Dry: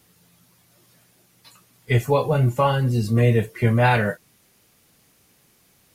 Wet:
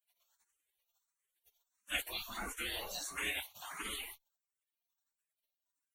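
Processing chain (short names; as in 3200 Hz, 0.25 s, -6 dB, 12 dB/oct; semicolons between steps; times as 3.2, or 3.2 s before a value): 3.08–3.83 HPF 75 Hz -> 240 Hz 12 dB/oct; spectral gate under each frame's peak -30 dB weak; 1.96–2.52 transient shaper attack -3 dB, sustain +3 dB; Butterworth band-stop 5000 Hz, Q 5; endless phaser +1.5 Hz; gain +4.5 dB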